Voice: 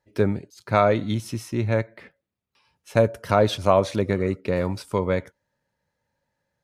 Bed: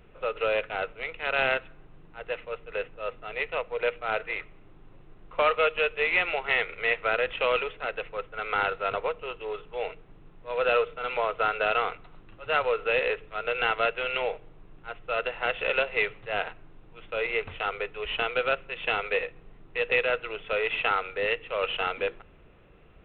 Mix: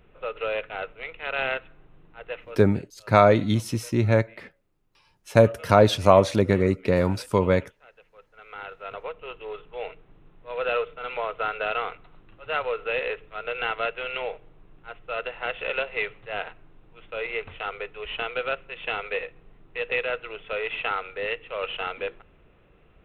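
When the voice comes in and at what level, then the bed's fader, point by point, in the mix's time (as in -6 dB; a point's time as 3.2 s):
2.40 s, +2.5 dB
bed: 2.43 s -2 dB
2.9 s -21.5 dB
7.99 s -21.5 dB
9.31 s -2 dB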